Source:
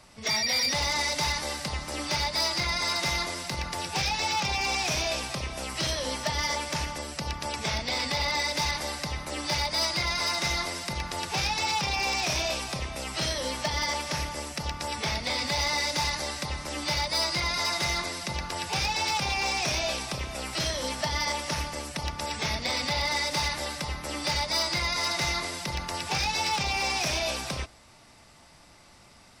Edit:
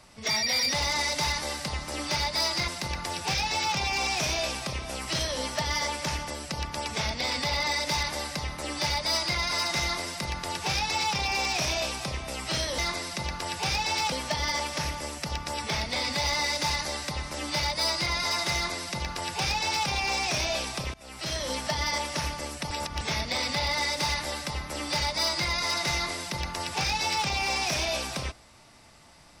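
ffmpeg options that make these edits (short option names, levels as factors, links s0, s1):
-filter_complex "[0:a]asplit=7[s0][s1][s2][s3][s4][s5][s6];[s0]atrim=end=2.682[s7];[s1]atrim=start=3.358:end=13.462[s8];[s2]atrim=start=17.878:end=19.222[s9];[s3]atrim=start=13.458:end=20.28,asetpts=PTS-STARTPTS,afade=t=out:st=6.818:d=0.004:c=hsin:silence=0.0749894[s10];[s4]atrim=start=20.28:end=22.052,asetpts=PTS-STARTPTS,afade=t=in:d=0.52:silence=0.0749894[s11];[s5]atrim=start=22.048:end=22.352,asetpts=PTS-STARTPTS,areverse[s12];[s6]atrim=start=22.348[s13];[s7][s8]acrossfade=d=0.004:c1=hsin:c2=hsin[s14];[s14][s9]acrossfade=d=0.004:c1=hsin:c2=hsin[s15];[s10][s11]concat=n=2:v=0:a=1[s16];[s15][s16]acrossfade=d=0.004:c1=hsin:c2=hsin[s17];[s17][s12]acrossfade=d=0.004:c1=hsin:c2=hsin[s18];[s18][s13]acrossfade=d=0.004:c1=hsin:c2=hsin"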